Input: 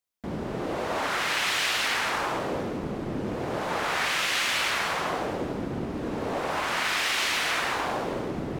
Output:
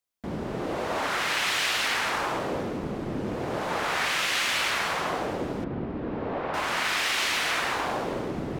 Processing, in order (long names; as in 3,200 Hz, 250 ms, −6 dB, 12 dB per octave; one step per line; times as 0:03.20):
0:05.64–0:06.54: high-frequency loss of the air 350 metres